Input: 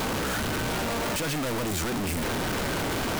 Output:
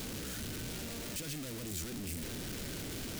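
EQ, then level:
bass and treble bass −4 dB, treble +3 dB
guitar amp tone stack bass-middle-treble 10-0-1
low-shelf EQ 100 Hz −12 dB
+10.0 dB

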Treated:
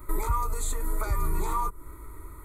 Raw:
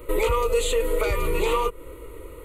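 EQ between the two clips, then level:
dynamic equaliser 2,500 Hz, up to −7 dB, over −42 dBFS, Q 0.73
phaser with its sweep stopped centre 1,200 Hz, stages 4
0.0 dB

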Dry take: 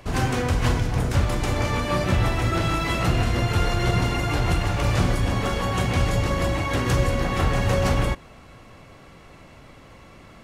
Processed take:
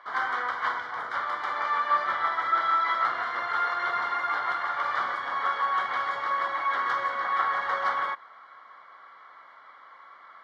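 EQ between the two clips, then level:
high-pass with resonance 1,200 Hz, resonance Q 2.7
Butterworth band-reject 2,600 Hz, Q 3.1
high-frequency loss of the air 340 metres
0.0 dB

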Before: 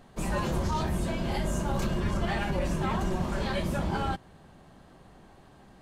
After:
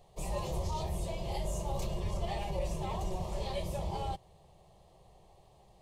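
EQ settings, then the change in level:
phaser with its sweep stopped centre 620 Hz, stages 4
−3.5 dB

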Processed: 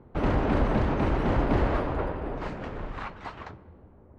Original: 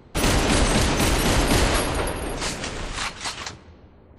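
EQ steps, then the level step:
low-pass filter 1,300 Hz 12 dB per octave
−3.5 dB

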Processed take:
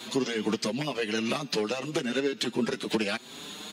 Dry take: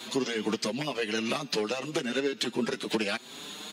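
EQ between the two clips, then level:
low-shelf EQ 220 Hz +4.5 dB
0.0 dB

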